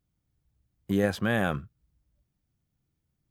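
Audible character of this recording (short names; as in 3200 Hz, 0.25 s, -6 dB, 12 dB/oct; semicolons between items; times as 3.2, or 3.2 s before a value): noise floor -80 dBFS; spectral tilt -5.5 dB/oct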